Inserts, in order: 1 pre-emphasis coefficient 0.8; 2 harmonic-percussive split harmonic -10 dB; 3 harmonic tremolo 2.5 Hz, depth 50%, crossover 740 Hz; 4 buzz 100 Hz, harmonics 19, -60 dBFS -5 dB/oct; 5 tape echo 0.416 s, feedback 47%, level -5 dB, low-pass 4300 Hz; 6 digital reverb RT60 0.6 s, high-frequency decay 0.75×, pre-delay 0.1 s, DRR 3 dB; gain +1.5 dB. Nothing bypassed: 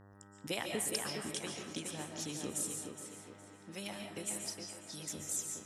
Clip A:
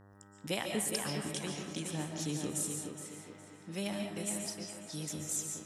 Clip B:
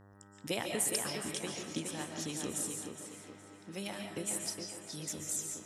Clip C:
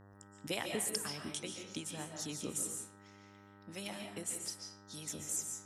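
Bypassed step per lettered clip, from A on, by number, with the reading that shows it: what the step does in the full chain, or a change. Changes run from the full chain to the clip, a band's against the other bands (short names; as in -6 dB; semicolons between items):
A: 2, 125 Hz band +6.0 dB; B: 3, momentary loudness spread change +1 LU; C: 5, momentary loudness spread change +6 LU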